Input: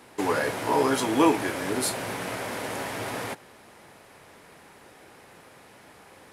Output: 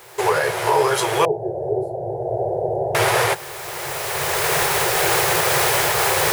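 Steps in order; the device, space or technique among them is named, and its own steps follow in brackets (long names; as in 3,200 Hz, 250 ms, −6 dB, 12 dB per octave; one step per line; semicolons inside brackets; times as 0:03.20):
high-pass filter 85 Hz
cheap recorder with automatic gain (white noise bed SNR 26 dB; camcorder AGC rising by 14 dB per second)
brick-wall band-stop 170–340 Hz
0:01.25–0:02.95: elliptic low-pass filter 740 Hz, stop band 40 dB
level +6 dB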